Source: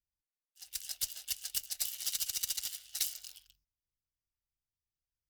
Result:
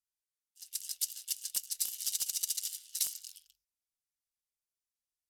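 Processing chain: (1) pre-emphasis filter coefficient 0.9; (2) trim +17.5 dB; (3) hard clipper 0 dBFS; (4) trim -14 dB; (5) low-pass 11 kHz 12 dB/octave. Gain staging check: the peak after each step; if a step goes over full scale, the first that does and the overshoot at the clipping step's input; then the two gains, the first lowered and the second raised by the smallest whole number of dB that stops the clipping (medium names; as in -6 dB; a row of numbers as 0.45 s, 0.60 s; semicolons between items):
-12.5 dBFS, +5.0 dBFS, 0.0 dBFS, -14.0 dBFS, -15.5 dBFS; step 2, 5.0 dB; step 2 +12.5 dB, step 4 -9 dB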